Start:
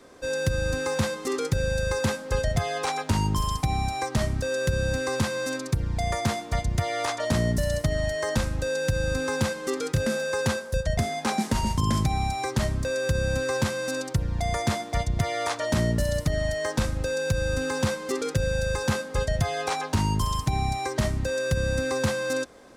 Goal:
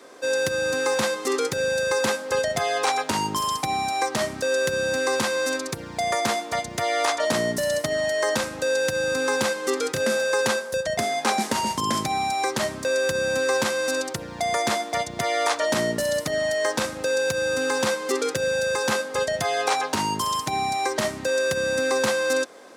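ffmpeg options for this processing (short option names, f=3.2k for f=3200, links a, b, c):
-af "highpass=330,volume=5.5dB"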